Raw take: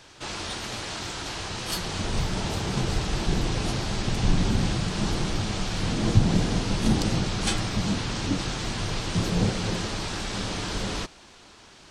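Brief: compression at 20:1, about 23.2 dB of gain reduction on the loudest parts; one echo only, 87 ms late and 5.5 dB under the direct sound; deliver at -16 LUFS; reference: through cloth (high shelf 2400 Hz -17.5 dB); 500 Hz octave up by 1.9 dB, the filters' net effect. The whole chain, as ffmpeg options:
-af "equalizer=f=500:t=o:g=3.5,acompressor=threshold=-35dB:ratio=20,highshelf=f=2.4k:g=-17.5,aecho=1:1:87:0.531,volume=25dB"

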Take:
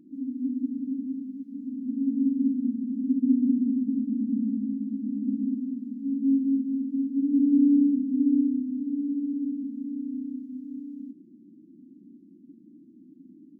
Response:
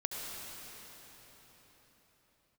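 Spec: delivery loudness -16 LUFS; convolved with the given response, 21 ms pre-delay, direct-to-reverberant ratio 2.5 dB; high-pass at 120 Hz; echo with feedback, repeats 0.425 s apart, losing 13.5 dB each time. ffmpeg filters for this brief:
-filter_complex "[0:a]highpass=120,aecho=1:1:425|850:0.211|0.0444,asplit=2[a][b];[1:a]atrim=start_sample=2205,adelay=21[c];[b][c]afir=irnorm=-1:irlink=0,volume=-5.5dB[d];[a][d]amix=inputs=2:normalize=0,volume=8dB"

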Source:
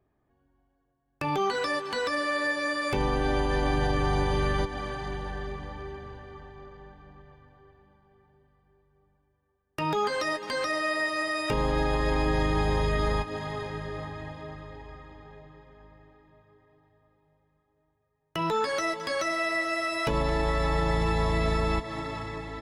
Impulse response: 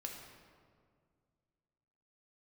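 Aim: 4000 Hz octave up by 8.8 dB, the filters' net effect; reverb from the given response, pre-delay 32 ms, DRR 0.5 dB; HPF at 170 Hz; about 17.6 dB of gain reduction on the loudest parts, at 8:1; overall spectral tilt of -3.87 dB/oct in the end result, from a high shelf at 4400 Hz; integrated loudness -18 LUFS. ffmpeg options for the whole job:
-filter_complex "[0:a]highpass=170,equalizer=f=4k:t=o:g=7,highshelf=f=4.4k:g=7,acompressor=threshold=-42dB:ratio=8,asplit=2[a][b];[1:a]atrim=start_sample=2205,adelay=32[c];[b][c]afir=irnorm=-1:irlink=0,volume=1.5dB[d];[a][d]amix=inputs=2:normalize=0,volume=23dB"

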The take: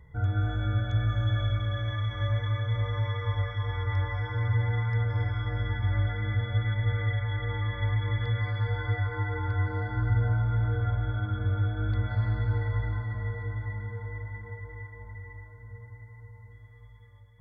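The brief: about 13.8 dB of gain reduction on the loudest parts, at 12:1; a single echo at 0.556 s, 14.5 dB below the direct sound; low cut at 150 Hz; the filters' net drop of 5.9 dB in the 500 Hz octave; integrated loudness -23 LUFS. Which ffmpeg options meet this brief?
-af "highpass=150,equalizer=f=500:t=o:g=-6.5,acompressor=threshold=-42dB:ratio=12,aecho=1:1:556:0.188,volume=23dB"

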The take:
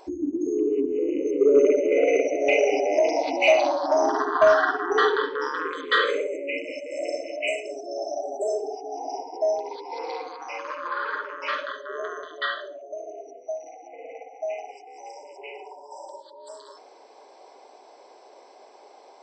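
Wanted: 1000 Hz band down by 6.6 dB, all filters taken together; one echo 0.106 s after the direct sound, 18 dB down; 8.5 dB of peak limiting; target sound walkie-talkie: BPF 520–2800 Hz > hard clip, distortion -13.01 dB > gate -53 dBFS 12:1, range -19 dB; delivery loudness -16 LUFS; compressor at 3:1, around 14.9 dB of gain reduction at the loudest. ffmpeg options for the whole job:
-af "equalizer=f=1k:t=o:g=-8.5,acompressor=threshold=-36dB:ratio=3,alimiter=level_in=6dB:limit=-24dB:level=0:latency=1,volume=-6dB,highpass=520,lowpass=2.8k,aecho=1:1:106:0.126,asoftclip=type=hard:threshold=-39dB,agate=range=-19dB:threshold=-53dB:ratio=12,volume=28dB"

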